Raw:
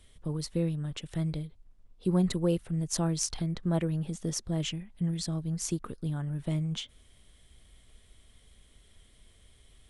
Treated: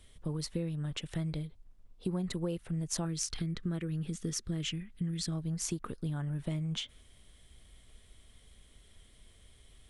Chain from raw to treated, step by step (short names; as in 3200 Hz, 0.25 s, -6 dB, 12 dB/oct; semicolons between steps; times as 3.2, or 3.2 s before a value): dynamic EQ 2000 Hz, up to +3 dB, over -52 dBFS, Q 0.74; compressor 6:1, threshold -31 dBFS, peak gain reduction 10 dB; 3.05–5.32 band shelf 740 Hz -10 dB 1.1 oct